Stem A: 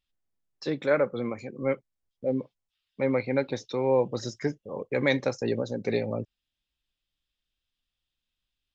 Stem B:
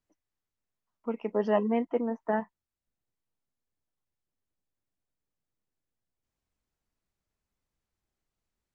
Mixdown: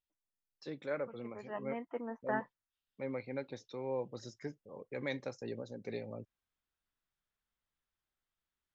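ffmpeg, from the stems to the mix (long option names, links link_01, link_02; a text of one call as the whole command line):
ffmpeg -i stem1.wav -i stem2.wav -filter_complex "[0:a]volume=-14dB[link_01];[1:a]equalizer=frequency=1500:width_type=o:width=1.6:gain=11,volume=-11dB,afade=type=in:start_time=1.43:duration=0.79:silence=0.237137[link_02];[link_01][link_02]amix=inputs=2:normalize=0" out.wav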